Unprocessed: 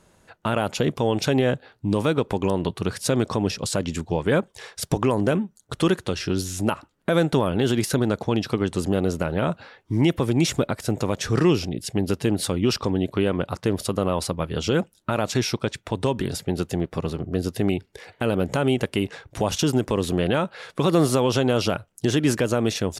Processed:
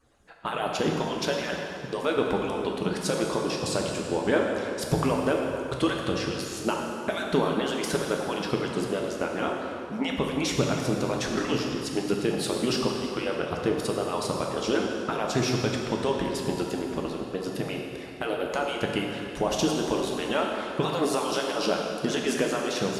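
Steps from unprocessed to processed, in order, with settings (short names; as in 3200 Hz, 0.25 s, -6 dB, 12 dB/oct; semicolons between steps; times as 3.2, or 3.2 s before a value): median-filter separation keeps percussive; high shelf 8300 Hz -8 dB; plate-style reverb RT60 2.7 s, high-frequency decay 0.8×, DRR -0.5 dB; gain -3 dB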